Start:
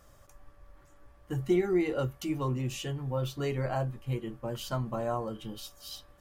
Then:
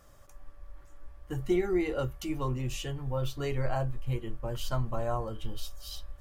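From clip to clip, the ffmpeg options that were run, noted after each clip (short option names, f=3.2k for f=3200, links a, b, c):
-af "asubboost=boost=11.5:cutoff=58"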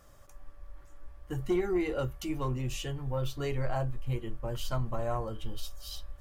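-af "asoftclip=type=tanh:threshold=-20dB"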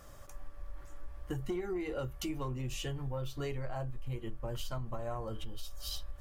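-af "acompressor=threshold=-39dB:ratio=6,volume=4.5dB"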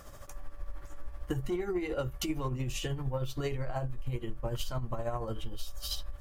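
-af "tremolo=f=13:d=0.52,volume=6dB"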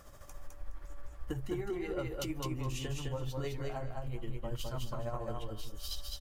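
-af "aecho=1:1:209|418|627:0.708|0.127|0.0229,volume=-5dB"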